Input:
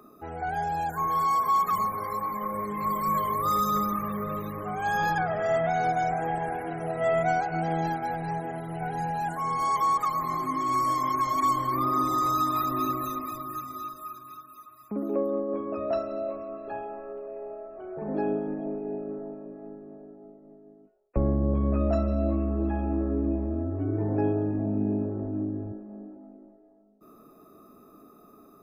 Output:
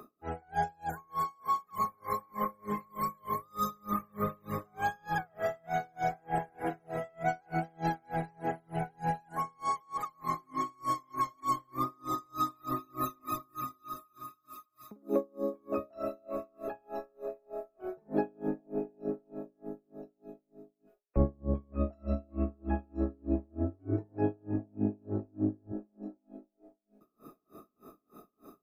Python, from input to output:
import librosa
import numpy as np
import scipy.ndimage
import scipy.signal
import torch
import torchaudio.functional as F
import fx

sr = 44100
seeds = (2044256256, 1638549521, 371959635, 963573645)

y = fx.rider(x, sr, range_db=4, speed_s=0.5)
y = fx.echo_wet_highpass(y, sr, ms=1025, feedback_pct=58, hz=3800.0, wet_db=-13.0)
y = y * 10.0 ** (-36 * (0.5 - 0.5 * np.cos(2.0 * np.pi * 3.3 * np.arange(len(y)) / sr)) / 20.0)